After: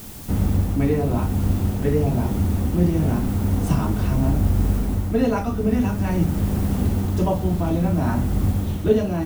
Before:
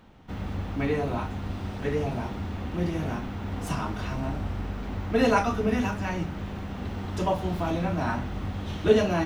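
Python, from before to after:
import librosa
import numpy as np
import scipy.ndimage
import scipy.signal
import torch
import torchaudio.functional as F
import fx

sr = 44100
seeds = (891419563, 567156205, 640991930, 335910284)

p1 = fx.quant_dither(x, sr, seeds[0], bits=6, dither='triangular')
p2 = x + (p1 * librosa.db_to_amplitude(-8.5))
p3 = fx.high_shelf(p2, sr, hz=5400.0, db=8.0)
p4 = fx.rider(p3, sr, range_db=5, speed_s=0.5)
y = fx.tilt_shelf(p4, sr, db=7.5, hz=640.0)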